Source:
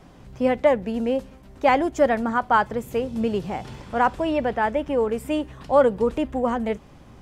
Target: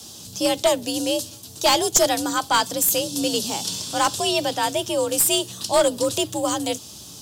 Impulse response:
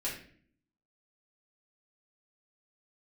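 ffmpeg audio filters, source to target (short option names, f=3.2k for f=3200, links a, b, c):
-af "afreqshift=56,aexciter=amount=13.1:drive=8.5:freq=3.3k,aeval=exprs='clip(val(0),-1,0.237)':c=same,volume=-1dB"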